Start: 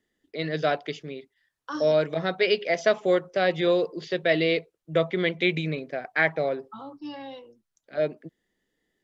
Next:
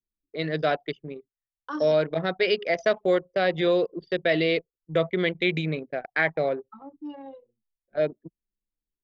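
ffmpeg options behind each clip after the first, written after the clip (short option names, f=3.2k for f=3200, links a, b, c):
-filter_complex "[0:a]anlmdn=6.31,asplit=2[a][b];[b]alimiter=limit=-15.5dB:level=0:latency=1,volume=-1dB[c];[a][c]amix=inputs=2:normalize=0,volume=-4.5dB"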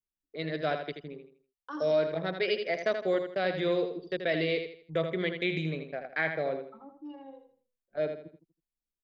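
-af "aecho=1:1:81|162|243|324:0.422|0.139|0.0459|0.0152,volume=-6.5dB"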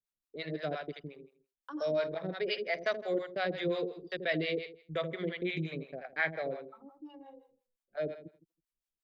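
-filter_complex "[0:a]acrossover=split=560[a][b];[a]aeval=exprs='val(0)*(1-1/2+1/2*cos(2*PI*5.7*n/s))':c=same[c];[b]aeval=exprs='val(0)*(1-1/2-1/2*cos(2*PI*5.7*n/s))':c=same[d];[c][d]amix=inputs=2:normalize=0,volume=1dB"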